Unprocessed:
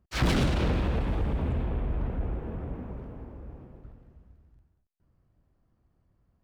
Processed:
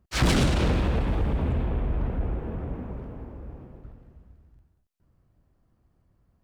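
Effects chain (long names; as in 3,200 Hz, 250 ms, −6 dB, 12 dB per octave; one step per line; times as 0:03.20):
dynamic equaliser 8,200 Hz, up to +6 dB, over −52 dBFS, Q 0.84
level +3 dB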